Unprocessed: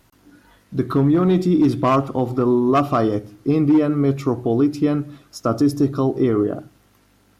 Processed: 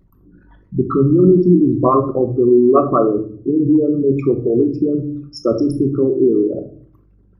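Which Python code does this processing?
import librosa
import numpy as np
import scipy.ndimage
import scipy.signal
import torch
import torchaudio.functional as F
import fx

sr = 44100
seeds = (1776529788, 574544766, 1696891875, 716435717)

y = fx.envelope_sharpen(x, sr, power=3.0)
y = fx.room_shoebox(y, sr, seeds[0], volume_m3=450.0, walls='furnished', distance_m=1.1)
y = y * librosa.db_to_amplitude(3.0)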